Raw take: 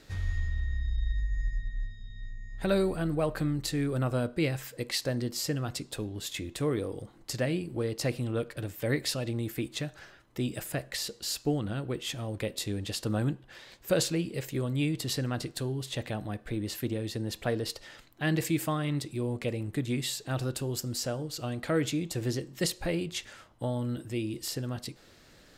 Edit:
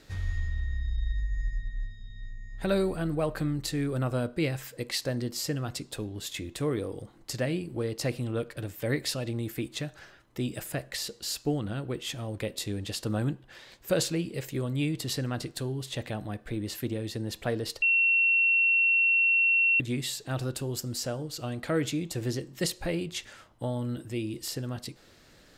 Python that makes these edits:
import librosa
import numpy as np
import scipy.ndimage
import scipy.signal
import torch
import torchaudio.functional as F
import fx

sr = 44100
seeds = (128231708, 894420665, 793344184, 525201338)

y = fx.edit(x, sr, fx.bleep(start_s=17.82, length_s=1.98, hz=2720.0, db=-20.0), tone=tone)